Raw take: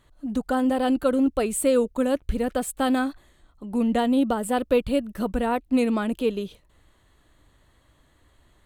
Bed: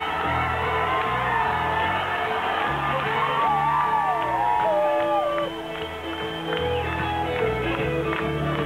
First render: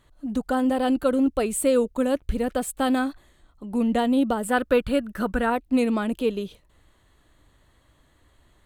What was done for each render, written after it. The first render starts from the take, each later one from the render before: 4.48–5.50 s: peaking EQ 1.5 kHz +11.5 dB 0.61 oct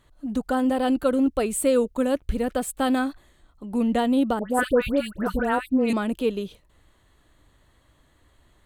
4.39–5.93 s: phase dispersion highs, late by 114 ms, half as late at 1.5 kHz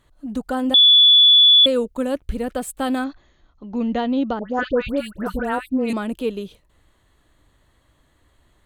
0.74–1.66 s: bleep 3.44 kHz -8 dBFS; 3.04–4.89 s: brick-wall FIR low-pass 6.9 kHz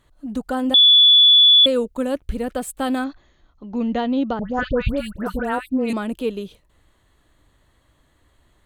4.39–5.16 s: resonant low shelf 200 Hz +12 dB, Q 1.5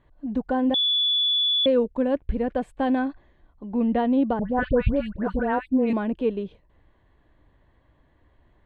low-pass 1.9 kHz 12 dB/octave; band-stop 1.3 kHz, Q 5.1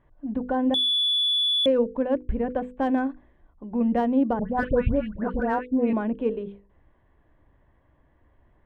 local Wiener filter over 9 samples; hum notches 50/100/150/200/250/300/350/400/450/500 Hz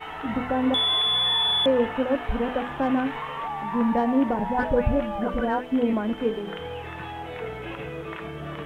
add bed -10 dB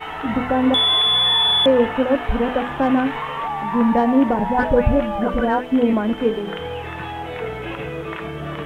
trim +6 dB

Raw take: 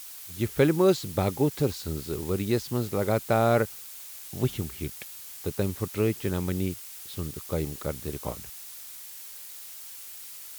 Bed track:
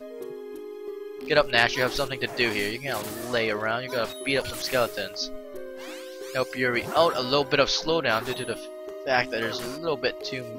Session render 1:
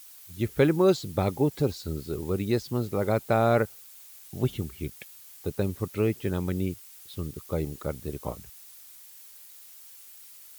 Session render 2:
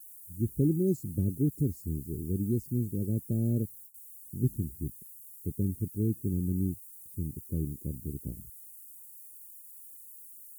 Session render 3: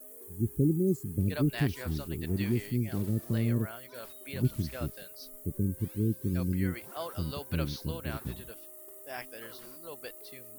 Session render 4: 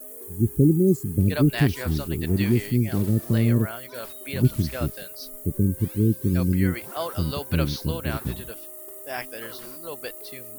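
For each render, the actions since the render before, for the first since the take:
noise reduction 8 dB, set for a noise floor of -43 dBFS
inverse Chebyshev band-stop 1.1–2.6 kHz, stop band 80 dB; gate with hold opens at -39 dBFS
add bed track -18 dB
trim +8.5 dB

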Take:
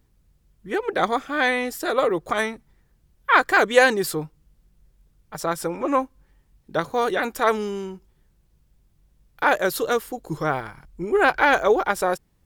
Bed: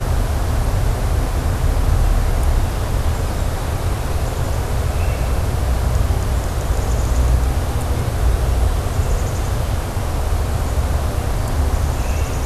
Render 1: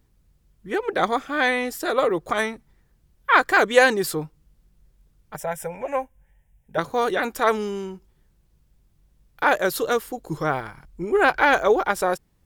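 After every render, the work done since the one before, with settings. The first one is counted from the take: 5.36–6.78 s: static phaser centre 1.2 kHz, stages 6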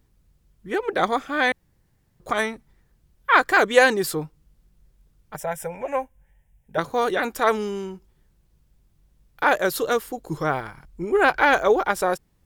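1.52–2.20 s: room tone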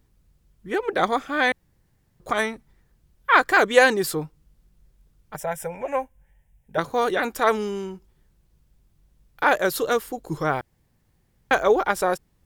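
10.61–11.51 s: room tone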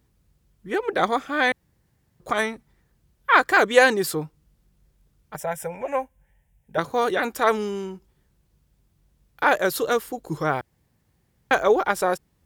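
high-pass 51 Hz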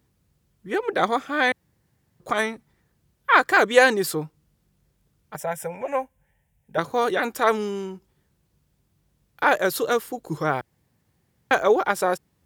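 high-pass 73 Hz 12 dB/octave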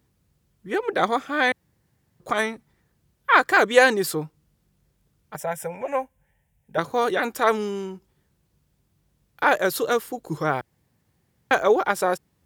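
no audible change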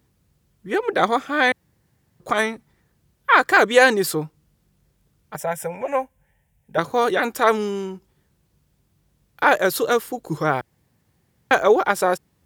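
trim +3 dB; peak limiter -2 dBFS, peak gain reduction 3 dB

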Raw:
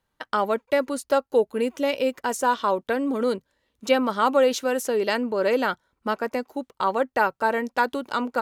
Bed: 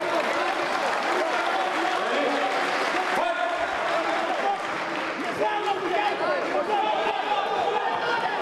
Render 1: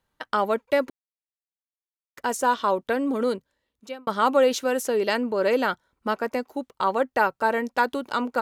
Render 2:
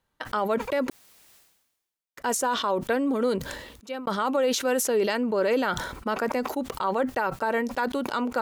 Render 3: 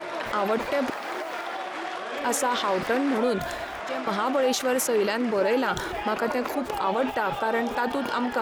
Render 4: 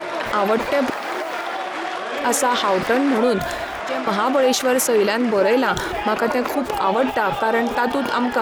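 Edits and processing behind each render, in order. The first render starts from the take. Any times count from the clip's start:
0.90–2.17 s: mute; 3.20–4.07 s: fade out
peak limiter -16 dBFS, peak gain reduction 8 dB; decay stretcher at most 57 dB/s
add bed -8 dB
trim +6.5 dB

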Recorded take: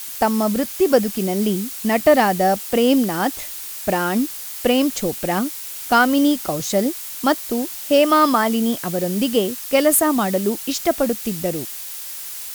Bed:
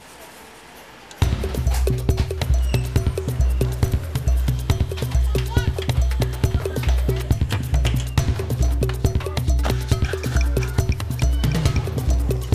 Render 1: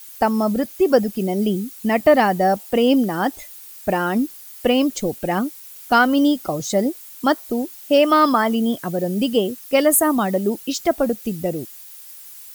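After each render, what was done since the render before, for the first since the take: noise reduction 12 dB, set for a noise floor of -32 dBFS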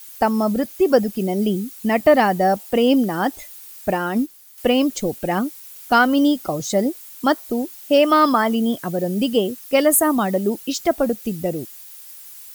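3.91–4.58 s: upward expansion, over -31 dBFS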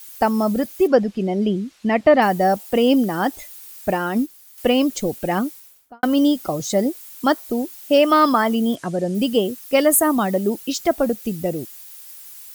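0.87–2.22 s: low-pass 4.2 kHz; 5.46–6.03 s: studio fade out; 8.75–9.15 s: low-pass 9.1 kHz 24 dB/octave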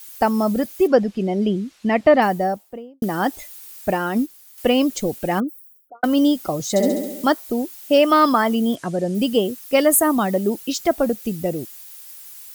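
2.09–3.02 s: studio fade out; 5.40–6.04 s: resonances exaggerated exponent 3; 6.69–7.30 s: flutter echo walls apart 11.6 m, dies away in 1 s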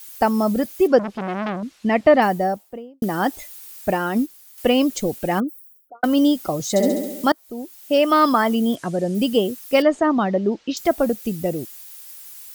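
0.99–1.63 s: transformer saturation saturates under 1.3 kHz; 7.32–8.57 s: fade in equal-power, from -22.5 dB; 9.82–10.77 s: Bessel low-pass 3.5 kHz, order 8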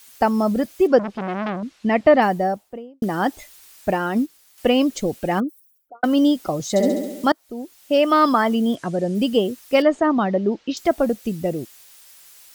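treble shelf 9.7 kHz -11 dB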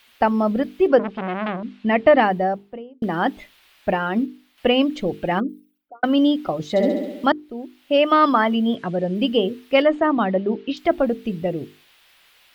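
resonant high shelf 4.7 kHz -14 dB, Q 1.5; hum notches 50/100/150/200/250/300/350/400/450 Hz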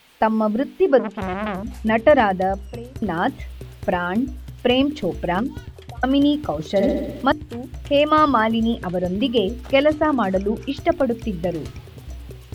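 add bed -16 dB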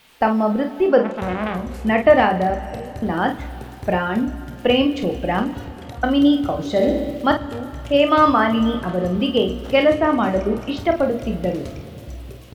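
early reflections 28 ms -9 dB, 49 ms -8.5 dB; plate-style reverb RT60 3.3 s, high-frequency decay 0.95×, DRR 13 dB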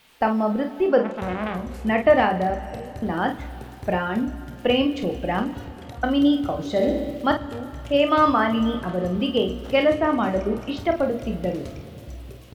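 trim -3.5 dB

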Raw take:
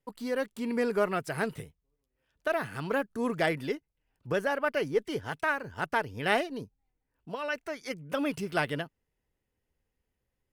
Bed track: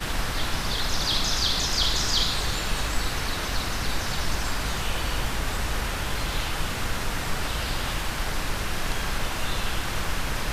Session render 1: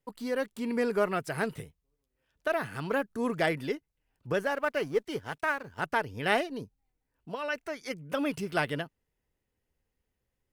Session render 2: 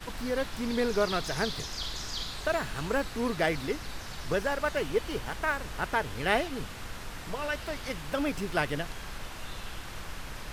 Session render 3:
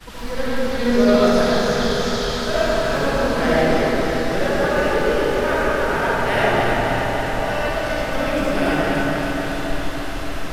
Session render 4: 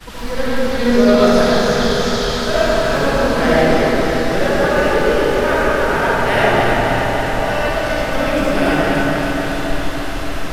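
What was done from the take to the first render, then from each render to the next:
4.43–5.79 s: companding laws mixed up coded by A
add bed track -12.5 dB
on a send: echo whose repeats swap between lows and highs 143 ms, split 1 kHz, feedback 86%, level -3.5 dB; on the sum: algorithmic reverb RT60 3.2 s, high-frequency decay 0.4×, pre-delay 30 ms, DRR -8.5 dB
trim +4 dB; peak limiter -1 dBFS, peak gain reduction 2.5 dB

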